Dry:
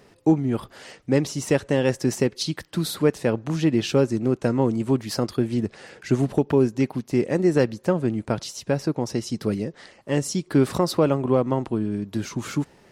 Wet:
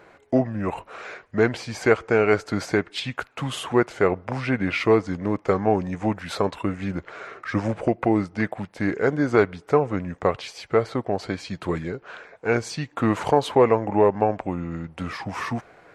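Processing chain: high-order bell 1.3 kHz +12.5 dB 2.9 oct; tape speed -19%; trim -5 dB

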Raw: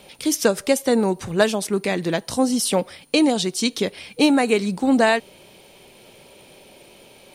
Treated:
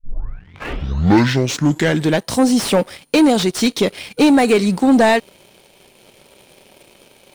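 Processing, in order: tape start-up on the opening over 2.25 s; waveshaping leveller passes 2; slew-rate limiter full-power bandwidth 470 Hz

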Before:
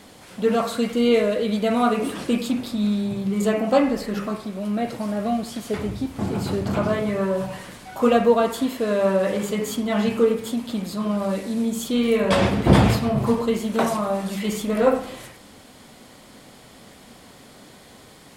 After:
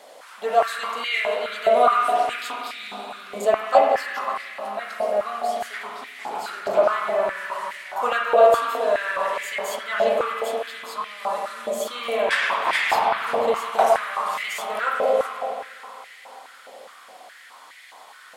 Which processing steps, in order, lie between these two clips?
spring tank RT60 3.6 s, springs 47/53 ms, chirp 45 ms, DRR 0 dB; step-sequenced high-pass 4.8 Hz 600–2000 Hz; trim -3 dB

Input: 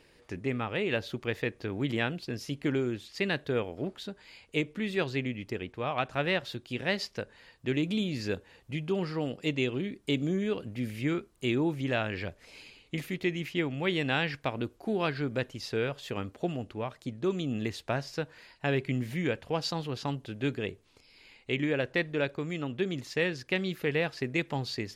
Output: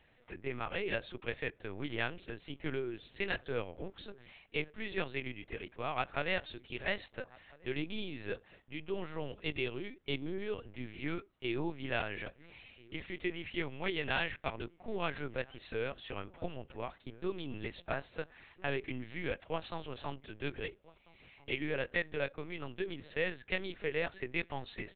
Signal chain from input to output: high-pass 1.4 kHz 6 dB/octave; tilt EQ -2.5 dB/octave; echo from a far wall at 230 m, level -22 dB; LPC vocoder at 8 kHz pitch kept; trim +1 dB

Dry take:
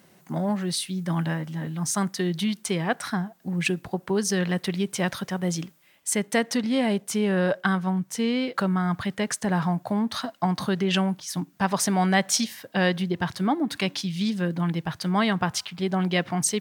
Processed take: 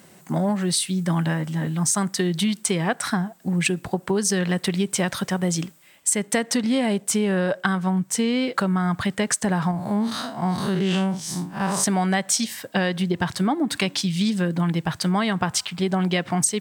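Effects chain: 9.71–11.84 s: spectral blur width 118 ms; peaking EQ 8 kHz +8 dB 0.31 oct; compression, threshold -24 dBFS, peak gain reduction 10 dB; trim +6 dB

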